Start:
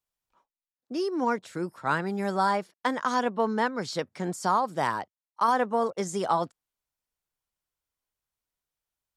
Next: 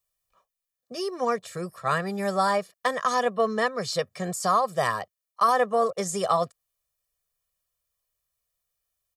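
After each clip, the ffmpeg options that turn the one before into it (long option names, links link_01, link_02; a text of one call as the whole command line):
ffmpeg -i in.wav -af "highshelf=frequency=7500:gain=8.5,aecho=1:1:1.7:0.92" out.wav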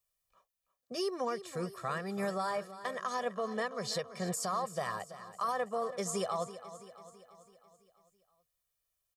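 ffmpeg -i in.wav -af "alimiter=limit=-22dB:level=0:latency=1:release=421,aecho=1:1:331|662|993|1324|1655|1986:0.2|0.11|0.0604|0.0332|0.0183|0.01,volume=-3dB" out.wav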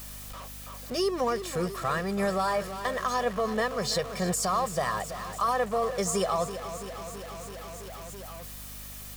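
ffmpeg -i in.wav -af "aeval=exprs='val(0)+0.5*0.00708*sgn(val(0))':channel_layout=same,aeval=exprs='val(0)+0.00282*(sin(2*PI*50*n/s)+sin(2*PI*2*50*n/s)/2+sin(2*PI*3*50*n/s)/3+sin(2*PI*4*50*n/s)/4+sin(2*PI*5*50*n/s)/5)':channel_layout=same,volume=6dB" out.wav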